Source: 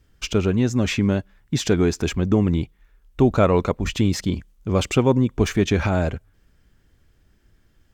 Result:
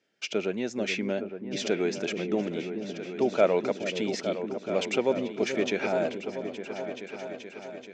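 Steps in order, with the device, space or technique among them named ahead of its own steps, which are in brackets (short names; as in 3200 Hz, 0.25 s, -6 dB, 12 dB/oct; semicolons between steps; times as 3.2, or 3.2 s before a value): television speaker (speaker cabinet 230–6600 Hz, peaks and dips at 270 Hz -7 dB, 620 Hz +6 dB, 1100 Hz -10 dB, 2300 Hz +5 dB); repeats that get brighter 0.431 s, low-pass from 400 Hz, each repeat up 2 oct, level -6 dB; gain -6 dB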